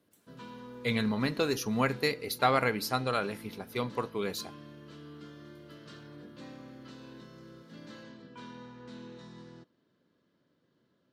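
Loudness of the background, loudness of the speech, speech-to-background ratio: -49.0 LUFS, -31.0 LUFS, 18.0 dB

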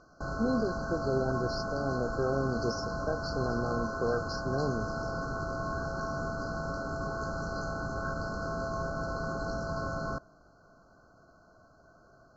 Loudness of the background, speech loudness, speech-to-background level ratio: -35.5 LUFS, -34.0 LUFS, 1.5 dB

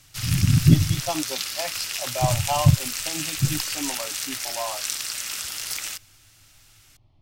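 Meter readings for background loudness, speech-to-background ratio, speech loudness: -28.0 LUFS, 4.0 dB, -24.0 LUFS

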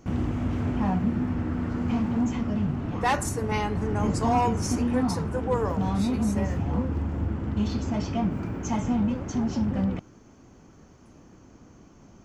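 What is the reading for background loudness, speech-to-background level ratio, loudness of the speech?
-28.0 LUFS, -2.0 dB, -30.0 LUFS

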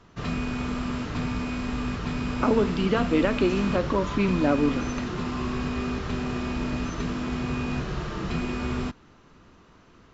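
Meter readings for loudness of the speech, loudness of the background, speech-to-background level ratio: -25.0 LUFS, -30.0 LUFS, 5.0 dB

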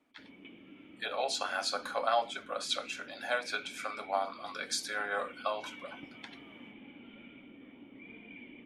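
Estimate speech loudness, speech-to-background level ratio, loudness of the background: -35.0 LUFS, 16.5 dB, -51.5 LUFS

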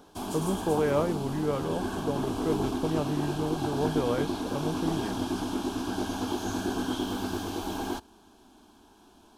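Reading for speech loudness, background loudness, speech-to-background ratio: -31.5 LUFS, -32.5 LUFS, 1.0 dB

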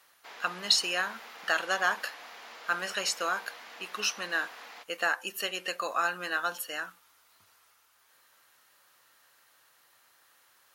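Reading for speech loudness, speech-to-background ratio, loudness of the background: -31.0 LUFS, 15.5 dB, -46.5 LUFS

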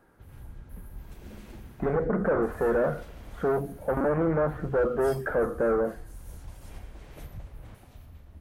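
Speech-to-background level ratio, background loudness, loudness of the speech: 19.0 dB, -46.5 LUFS, -27.5 LUFS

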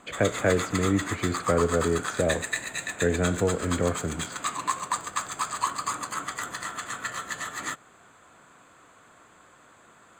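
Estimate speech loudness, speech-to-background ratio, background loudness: -27.0 LUFS, 4.5 dB, -31.5 LUFS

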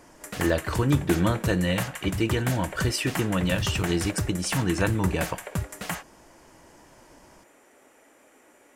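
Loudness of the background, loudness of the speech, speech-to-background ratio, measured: -33.0 LUFS, -26.5 LUFS, 6.5 dB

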